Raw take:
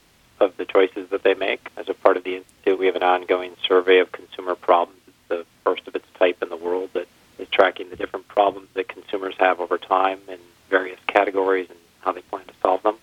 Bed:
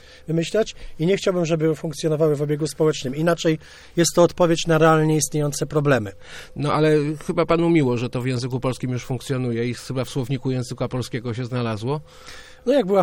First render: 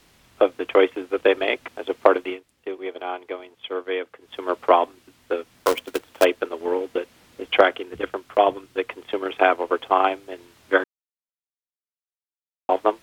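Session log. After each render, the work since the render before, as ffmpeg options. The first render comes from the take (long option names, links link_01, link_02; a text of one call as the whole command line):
ffmpeg -i in.wav -filter_complex "[0:a]asplit=3[link_01][link_02][link_03];[link_01]afade=type=out:start_time=5.54:duration=0.02[link_04];[link_02]acrusher=bits=2:mode=log:mix=0:aa=0.000001,afade=type=in:start_time=5.54:duration=0.02,afade=type=out:start_time=6.23:duration=0.02[link_05];[link_03]afade=type=in:start_time=6.23:duration=0.02[link_06];[link_04][link_05][link_06]amix=inputs=3:normalize=0,asplit=5[link_07][link_08][link_09][link_10][link_11];[link_07]atrim=end=2.41,asetpts=PTS-STARTPTS,afade=type=out:start_time=2.25:duration=0.16:silence=0.251189[link_12];[link_08]atrim=start=2.41:end=4.2,asetpts=PTS-STARTPTS,volume=-12dB[link_13];[link_09]atrim=start=4.2:end=10.84,asetpts=PTS-STARTPTS,afade=type=in:duration=0.16:silence=0.251189,afade=type=out:start_time=6.636:duration=0.004:curve=hsin[link_14];[link_10]atrim=start=10.84:end=12.69,asetpts=PTS-STARTPTS,volume=0[link_15];[link_11]atrim=start=12.69,asetpts=PTS-STARTPTS,afade=type=in:duration=0.004:curve=hsin[link_16];[link_12][link_13][link_14][link_15][link_16]concat=n=5:v=0:a=1" out.wav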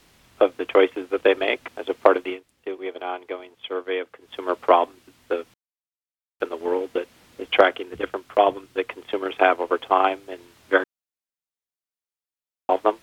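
ffmpeg -i in.wav -filter_complex "[0:a]asplit=3[link_01][link_02][link_03];[link_01]atrim=end=5.54,asetpts=PTS-STARTPTS,afade=type=out:start_time=5.536:duration=0.004:curve=hsin[link_04];[link_02]atrim=start=5.54:end=6.4,asetpts=PTS-STARTPTS,volume=0[link_05];[link_03]atrim=start=6.4,asetpts=PTS-STARTPTS,afade=type=in:duration=0.004:curve=hsin[link_06];[link_04][link_05][link_06]concat=n=3:v=0:a=1" out.wav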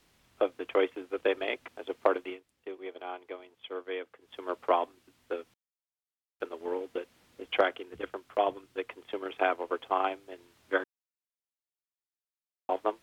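ffmpeg -i in.wav -af "volume=-10dB" out.wav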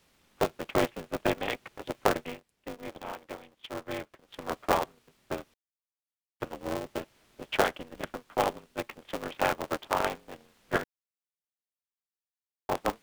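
ffmpeg -i in.wav -af "aeval=exprs='val(0)*sgn(sin(2*PI*120*n/s))':channel_layout=same" out.wav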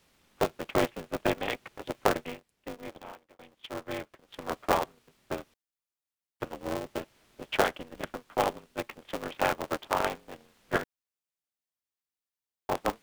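ffmpeg -i in.wav -filter_complex "[0:a]asplit=2[link_01][link_02];[link_01]atrim=end=3.39,asetpts=PTS-STARTPTS,afade=type=out:start_time=2.79:duration=0.6[link_03];[link_02]atrim=start=3.39,asetpts=PTS-STARTPTS,afade=type=in:duration=0.004:curve=hsin[link_04];[link_03][link_04]concat=n=2:v=0:a=1" out.wav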